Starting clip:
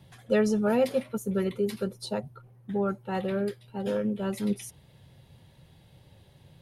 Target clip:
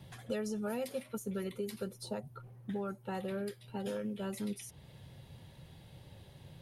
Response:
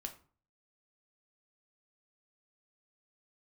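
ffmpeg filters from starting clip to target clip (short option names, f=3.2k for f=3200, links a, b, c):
-filter_complex "[0:a]acrossover=split=1600|6200[a][b][c];[a]acompressor=threshold=-39dB:ratio=4[d];[b]acompressor=threshold=-55dB:ratio=4[e];[c]acompressor=threshold=-51dB:ratio=4[f];[d][e][f]amix=inputs=3:normalize=0,volume=1.5dB"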